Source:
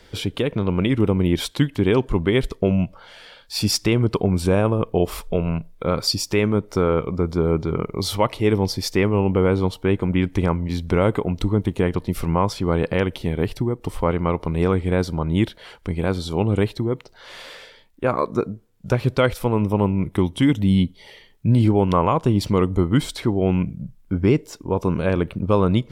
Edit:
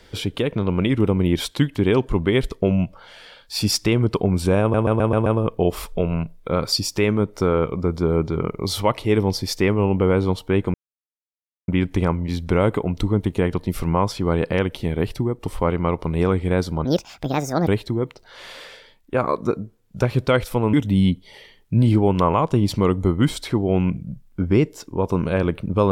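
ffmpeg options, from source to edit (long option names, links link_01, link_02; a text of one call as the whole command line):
ffmpeg -i in.wav -filter_complex "[0:a]asplit=10[link_01][link_02][link_03][link_04][link_05][link_06][link_07][link_08][link_09][link_10];[link_01]atrim=end=4.742[link_11];[link_02]atrim=start=4.608:end=4.742[link_12];[link_03]atrim=start=4.608:end=4.742[link_13];[link_04]atrim=start=4.608:end=4.742[link_14];[link_05]atrim=start=4.608:end=4.742[link_15];[link_06]atrim=start=4.608:end=10.09,asetpts=PTS-STARTPTS,afade=type=out:start_time=5.478:duration=0.004:curve=hsin,apad=pad_dur=0.94[link_16];[link_07]atrim=start=10.09:end=15.264,asetpts=PTS-STARTPTS,afade=type=in:duration=0.004:curve=hsin[link_17];[link_08]atrim=start=15.26:end=16.57,asetpts=PTS-STARTPTS,asetrate=70119,aresample=44100[link_18];[link_09]atrim=start=16.566:end=19.632[link_19];[link_10]atrim=start=20.458[link_20];[link_11][link_12]acrossfade=duration=0.004:curve1=hsin:curve2=hsin[link_21];[link_21][link_13]acrossfade=duration=0.004:curve1=hsin:curve2=hsin[link_22];[link_22][link_14]acrossfade=duration=0.004:curve1=hsin:curve2=hsin[link_23];[link_23][link_15]acrossfade=duration=0.004:curve1=hsin:curve2=hsin[link_24];[link_16][link_17]concat=n=2:v=0:a=1[link_25];[link_24][link_25]acrossfade=duration=0.004:curve1=hsin:curve2=hsin[link_26];[link_26][link_18]acrossfade=duration=0.004:curve1=hsin:curve2=hsin[link_27];[link_27][link_19]acrossfade=duration=0.004:curve1=hsin:curve2=hsin[link_28];[link_28][link_20]acrossfade=duration=0.004:curve1=hsin:curve2=hsin" out.wav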